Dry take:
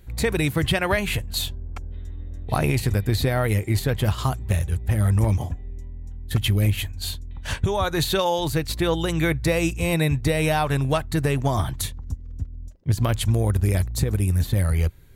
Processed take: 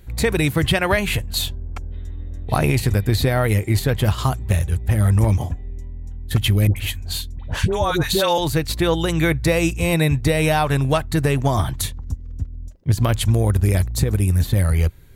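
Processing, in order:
0:06.67–0:08.38: all-pass dispersion highs, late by 91 ms, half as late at 790 Hz
level +3.5 dB

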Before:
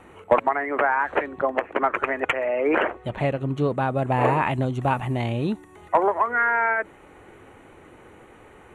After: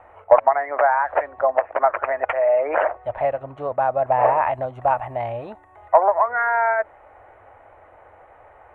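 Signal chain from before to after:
drawn EQ curve 100 Hz 0 dB, 160 Hz −17 dB, 400 Hz −8 dB, 630 Hz +12 dB, 1,200 Hz +3 dB, 1,900 Hz +1 dB, 3,100 Hz −10 dB, 5,100 Hz −17 dB
level −3 dB

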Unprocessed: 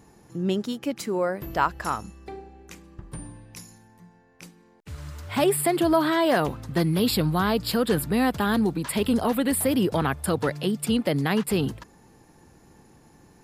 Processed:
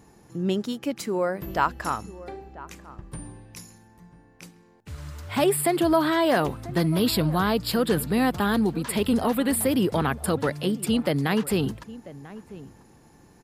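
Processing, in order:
slap from a distant wall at 170 metres, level −17 dB

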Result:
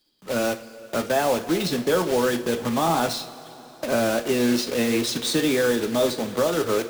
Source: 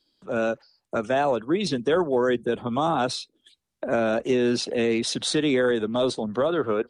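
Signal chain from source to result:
one scale factor per block 3 bits
coupled-rooms reverb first 0.32 s, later 4 s, from −18 dB, DRR 6 dB

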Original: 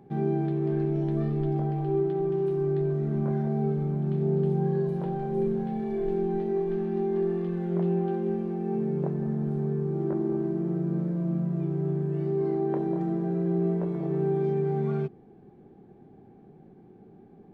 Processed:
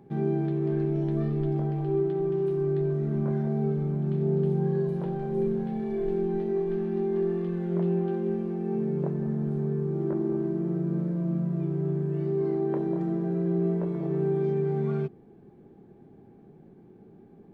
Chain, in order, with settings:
notch filter 760 Hz, Q 12

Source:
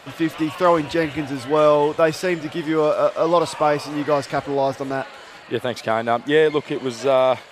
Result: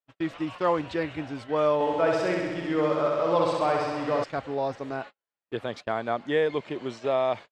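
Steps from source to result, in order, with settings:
noise gate −30 dBFS, range −47 dB
high-frequency loss of the air 82 metres
0:01.74–0:04.24: flutter between parallel walls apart 11.2 metres, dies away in 1.4 s
level −8 dB

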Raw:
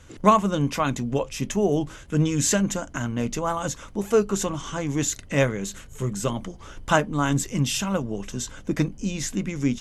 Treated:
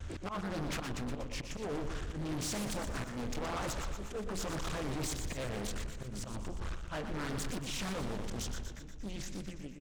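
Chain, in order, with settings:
fade-out on the ending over 2.20 s
Bessel low-pass filter 6,100 Hz
low shelf with overshoot 100 Hz +8.5 dB, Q 1.5
volume swells 429 ms
brickwall limiter −21.5 dBFS, peak gain reduction 12.5 dB
hard clipping −36.5 dBFS, distortion −5 dB
pitch vibrato 2 Hz 70 cents
repeating echo 120 ms, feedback 60%, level −7.5 dB
highs frequency-modulated by the lows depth 0.73 ms
level +1 dB

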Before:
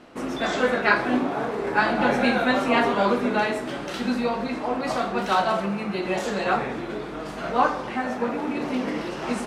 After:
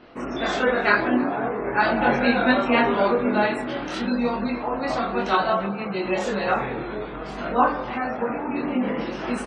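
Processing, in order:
gate on every frequency bin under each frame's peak −30 dB strong
multi-voice chorus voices 4, 0.35 Hz, delay 23 ms, depth 2.1 ms
slap from a distant wall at 54 metres, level −19 dB
level +4 dB

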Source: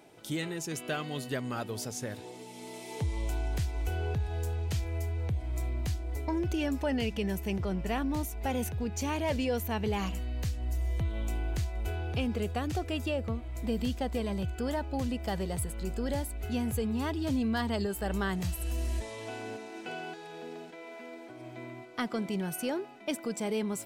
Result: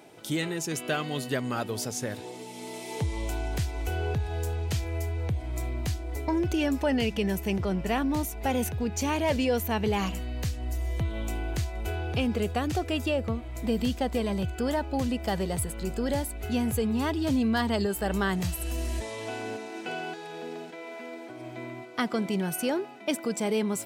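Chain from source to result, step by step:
high-pass filter 84 Hz 6 dB per octave
level +5 dB

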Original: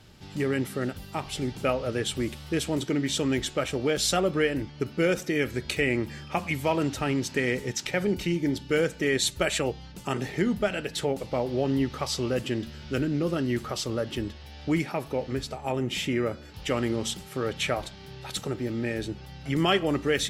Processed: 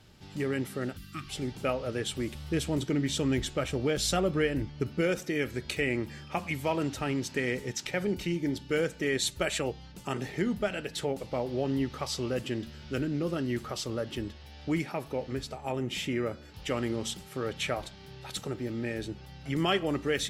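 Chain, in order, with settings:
0:00.97–0:01.30: gain on a spectral selection 380–1,100 Hz −24 dB
0:02.35–0:05.01: low-shelf EQ 150 Hz +9 dB
level −4 dB

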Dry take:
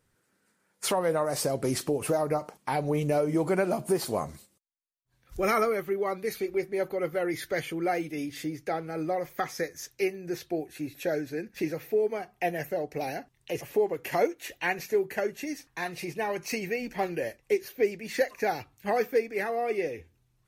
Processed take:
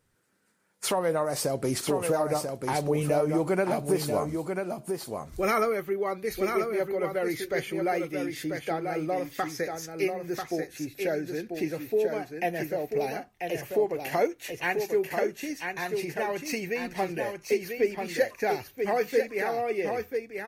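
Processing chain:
single-tap delay 990 ms −5.5 dB

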